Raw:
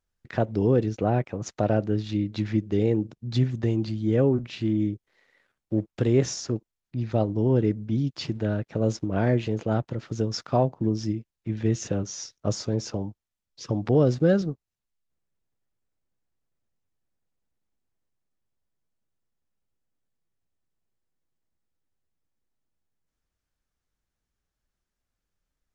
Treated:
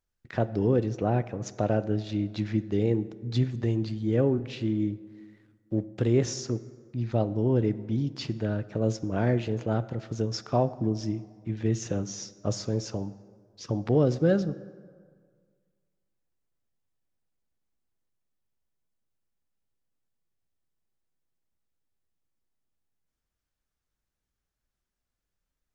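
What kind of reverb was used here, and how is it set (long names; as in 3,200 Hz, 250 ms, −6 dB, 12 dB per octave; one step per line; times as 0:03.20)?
dense smooth reverb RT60 1.8 s, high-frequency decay 0.55×, DRR 14.5 dB
level −2.5 dB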